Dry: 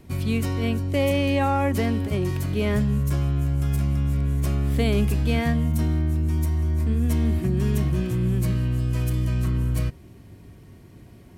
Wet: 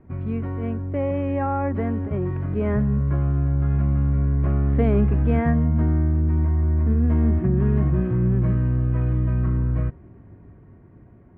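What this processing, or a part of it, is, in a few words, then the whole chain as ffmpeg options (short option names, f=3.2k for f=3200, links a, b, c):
action camera in a waterproof case: -af "lowpass=f=1.7k:w=0.5412,lowpass=f=1.7k:w=1.3066,dynaudnorm=f=750:g=7:m=5.5dB,volume=-2.5dB" -ar 48000 -c:a aac -b:a 64k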